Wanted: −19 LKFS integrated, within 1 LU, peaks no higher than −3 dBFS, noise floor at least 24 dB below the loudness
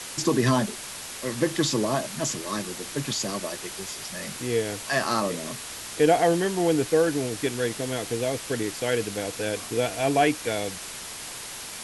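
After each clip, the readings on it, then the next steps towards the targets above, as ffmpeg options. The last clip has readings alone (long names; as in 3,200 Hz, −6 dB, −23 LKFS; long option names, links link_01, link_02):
background noise floor −38 dBFS; target noise floor −51 dBFS; integrated loudness −26.5 LKFS; sample peak −7.0 dBFS; target loudness −19.0 LKFS
→ -af "afftdn=noise_reduction=13:noise_floor=-38"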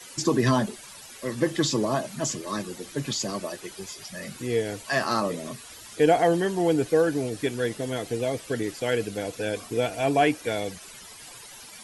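background noise floor −45 dBFS; target noise floor −51 dBFS
→ -af "afftdn=noise_reduction=6:noise_floor=-45"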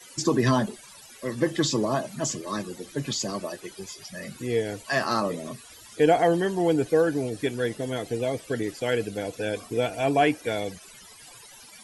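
background noise floor −48 dBFS; target noise floor −51 dBFS
→ -af "afftdn=noise_reduction=6:noise_floor=-48"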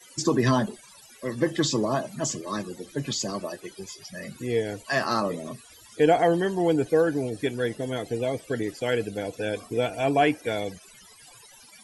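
background noise floor −51 dBFS; integrated loudness −26.5 LKFS; sample peak −7.5 dBFS; target loudness −19.0 LKFS
→ -af "volume=7.5dB,alimiter=limit=-3dB:level=0:latency=1"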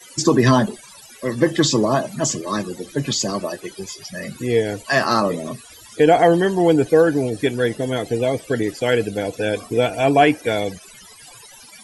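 integrated loudness −19.0 LKFS; sample peak −3.0 dBFS; background noise floor −44 dBFS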